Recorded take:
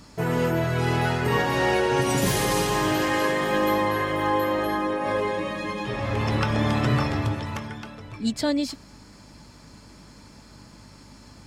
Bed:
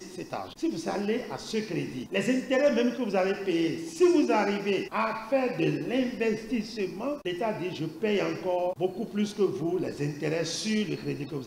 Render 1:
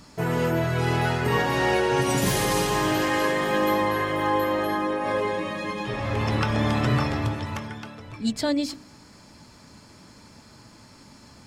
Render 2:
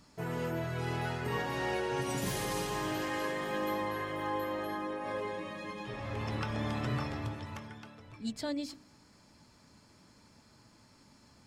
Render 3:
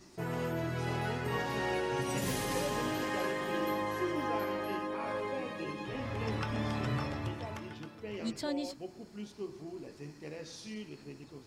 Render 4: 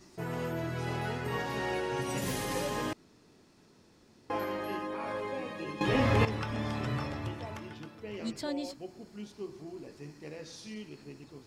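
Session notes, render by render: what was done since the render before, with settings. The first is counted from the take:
hum removal 50 Hz, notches 11
level −11.5 dB
mix in bed −15.5 dB
0:02.93–0:04.30: fill with room tone; 0:05.81–0:06.25: clip gain +12 dB

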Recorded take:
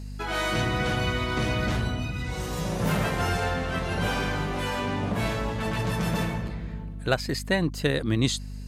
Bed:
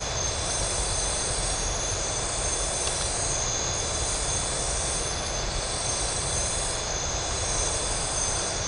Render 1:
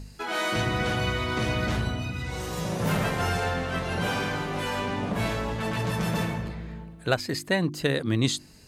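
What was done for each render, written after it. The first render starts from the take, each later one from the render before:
hum removal 50 Hz, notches 7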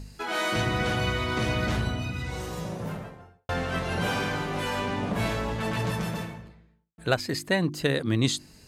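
0:02.14–0:03.49: fade out and dull
0:05.87–0:06.98: fade out quadratic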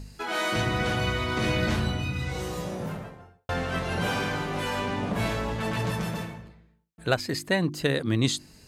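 0:01.41–0:02.86: double-tracking delay 22 ms −3.5 dB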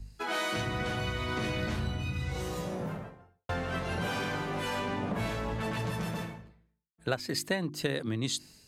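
downward compressor 6 to 1, threshold −29 dBFS, peak gain reduction 11 dB
multiband upward and downward expander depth 70%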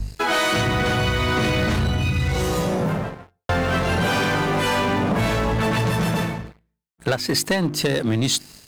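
in parallel at +1 dB: downward compressor 6 to 1, threshold −41 dBFS, peak gain reduction 16 dB
on the sum: leveller curve on the samples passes 3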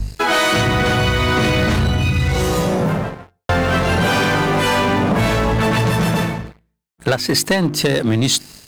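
level +4.5 dB

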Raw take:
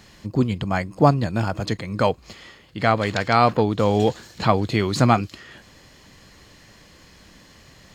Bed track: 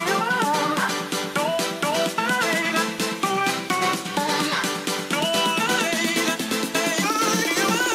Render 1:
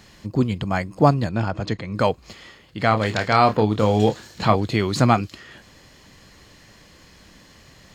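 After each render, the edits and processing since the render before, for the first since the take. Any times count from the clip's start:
0:01.29–0:01.95: high-frequency loss of the air 91 metres
0:02.89–0:04.56: double-tracking delay 28 ms −8 dB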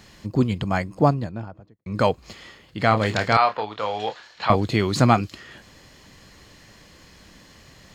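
0:00.70–0:01.86: fade out and dull
0:03.37–0:04.50: three-way crossover with the lows and the highs turned down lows −22 dB, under 600 Hz, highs −22 dB, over 4,900 Hz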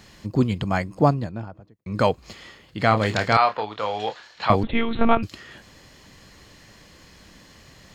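0:04.63–0:05.23: one-pitch LPC vocoder at 8 kHz 230 Hz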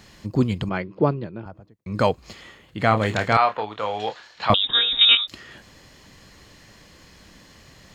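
0:00.69–0:01.46: loudspeaker in its box 150–3,600 Hz, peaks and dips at 260 Hz −6 dB, 380 Hz +8 dB, 730 Hz −9 dB, 1,100 Hz −3 dB, 1,800 Hz −4 dB
0:02.41–0:04.00: parametric band 4,900 Hz −8 dB 0.44 octaves
0:04.54–0:05.28: voice inversion scrambler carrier 3,700 Hz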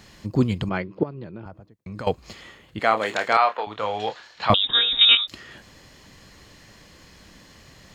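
0:01.03–0:02.07: downward compressor 4 to 1, threshold −32 dBFS
0:02.79–0:03.67: high-pass filter 400 Hz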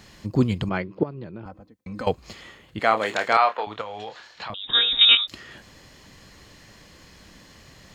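0:01.45–0:02.06: comb filter 3.9 ms
0:03.81–0:04.68: downward compressor, threshold −31 dBFS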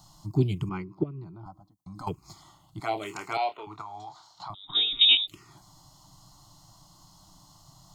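phaser with its sweep stopped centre 340 Hz, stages 8
phaser swept by the level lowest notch 400 Hz, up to 1,200 Hz, full sweep at −18 dBFS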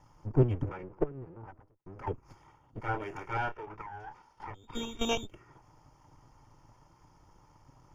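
lower of the sound and its delayed copy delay 2.2 ms
moving average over 11 samples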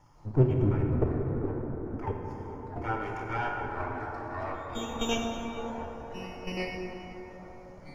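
delay with pitch and tempo change per echo 157 ms, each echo −4 semitones, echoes 2, each echo −6 dB
dense smooth reverb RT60 5 s, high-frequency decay 0.35×, DRR 0 dB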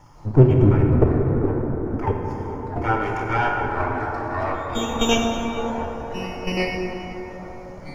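level +10.5 dB
brickwall limiter −2 dBFS, peak gain reduction 1.5 dB

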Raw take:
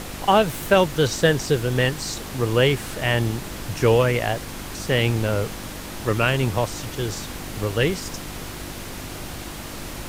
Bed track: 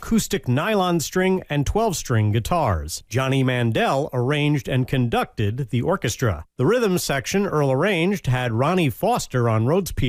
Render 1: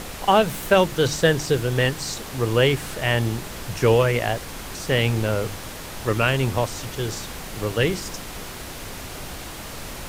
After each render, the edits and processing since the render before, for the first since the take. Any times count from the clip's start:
hum removal 50 Hz, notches 7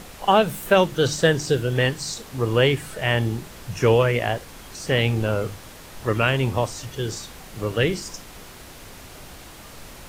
noise reduction from a noise print 7 dB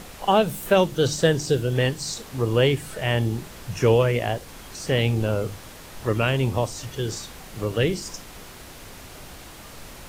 dynamic equaliser 1,600 Hz, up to −5 dB, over −35 dBFS, Q 0.77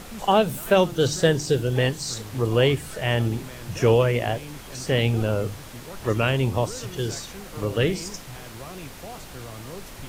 mix in bed track −20.5 dB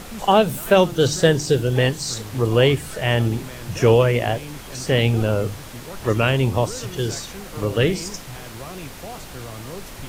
level +3.5 dB

